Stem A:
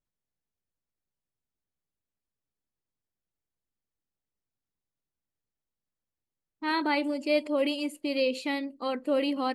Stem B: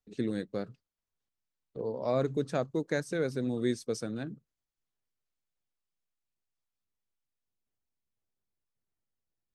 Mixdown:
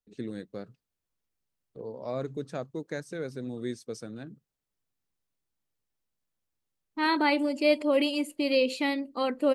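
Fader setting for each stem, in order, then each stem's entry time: +2.5, -4.5 dB; 0.35, 0.00 s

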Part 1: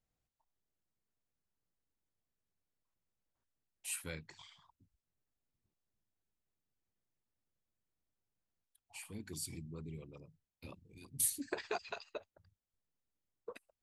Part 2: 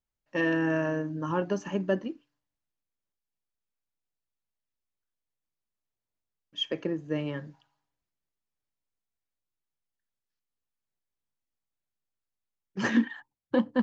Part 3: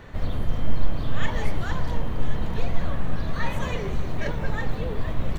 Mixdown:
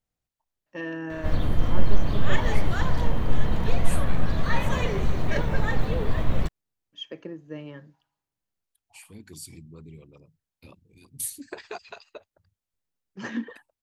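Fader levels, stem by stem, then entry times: +1.5, -7.0, +2.5 dB; 0.00, 0.40, 1.10 s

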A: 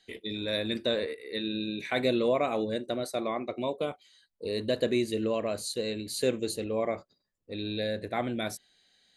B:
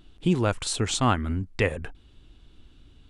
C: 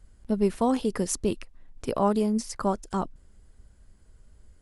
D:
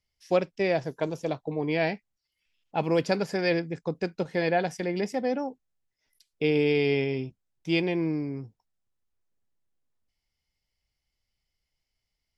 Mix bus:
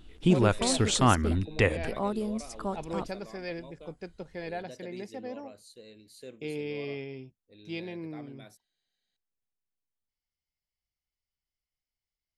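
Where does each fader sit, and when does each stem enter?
-18.5, 0.0, -7.5, -12.0 dB; 0.00, 0.00, 0.00, 0.00 s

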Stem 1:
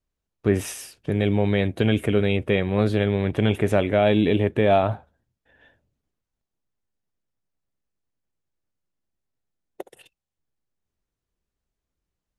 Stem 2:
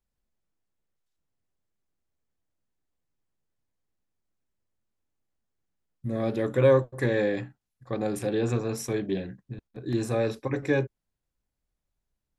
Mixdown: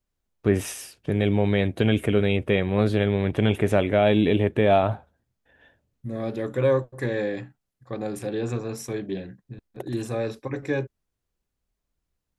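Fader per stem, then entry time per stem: -0.5, -1.5 dB; 0.00, 0.00 s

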